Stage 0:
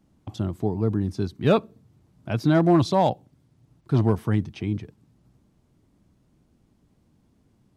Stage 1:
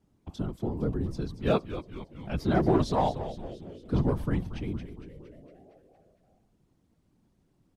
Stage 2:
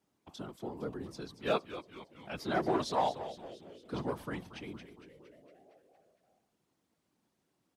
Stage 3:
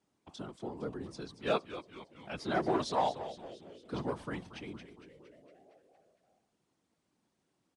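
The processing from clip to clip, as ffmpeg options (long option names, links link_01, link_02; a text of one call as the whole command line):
ffmpeg -i in.wav -filter_complex "[0:a]afftfilt=real='hypot(re,im)*cos(2*PI*random(0))':imag='hypot(re,im)*sin(2*PI*random(1))':win_size=512:overlap=0.75,asplit=2[link_01][link_02];[link_02]asplit=7[link_03][link_04][link_05][link_06][link_07][link_08][link_09];[link_03]adelay=230,afreqshift=-120,volume=-11.5dB[link_10];[link_04]adelay=460,afreqshift=-240,volume=-15.8dB[link_11];[link_05]adelay=690,afreqshift=-360,volume=-20.1dB[link_12];[link_06]adelay=920,afreqshift=-480,volume=-24.4dB[link_13];[link_07]adelay=1150,afreqshift=-600,volume=-28.7dB[link_14];[link_08]adelay=1380,afreqshift=-720,volume=-33dB[link_15];[link_09]adelay=1610,afreqshift=-840,volume=-37.3dB[link_16];[link_10][link_11][link_12][link_13][link_14][link_15][link_16]amix=inputs=7:normalize=0[link_17];[link_01][link_17]amix=inputs=2:normalize=0" out.wav
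ffmpeg -i in.wav -af "highpass=frequency=790:poles=1" out.wav
ffmpeg -i in.wav -af "aresample=22050,aresample=44100" out.wav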